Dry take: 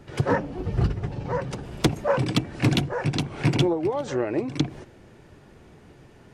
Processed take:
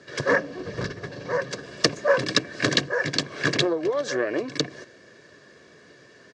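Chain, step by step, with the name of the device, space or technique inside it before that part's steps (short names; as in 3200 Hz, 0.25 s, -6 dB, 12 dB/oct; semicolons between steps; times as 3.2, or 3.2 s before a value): full-range speaker at full volume (Doppler distortion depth 0.69 ms; speaker cabinet 240–6700 Hz, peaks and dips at 280 Hz +6 dB, 830 Hz -7 dB, 1700 Hz +10 dB); band shelf 6400 Hz +9 dB; comb 1.8 ms, depth 52%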